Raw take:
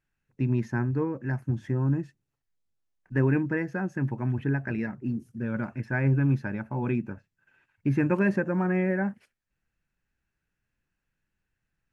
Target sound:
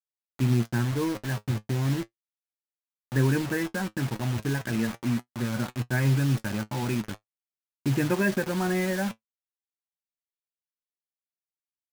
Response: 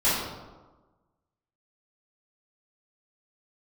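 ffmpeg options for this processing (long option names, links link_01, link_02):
-af "adynamicequalizer=threshold=0.0112:dfrequency=360:dqfactor=2.9:tfrequency=360:tqfactor=2.9:attack=5:release=100:ratio=0.375:range=1.5:mode=cutabove:tftype=bell,acrusher=bits=5:mix=0:aa=0.000001,flanger=delay=8:depth=1.5:regen=55:speed=0.36:shape=sinusoidal,volume=4.5dB"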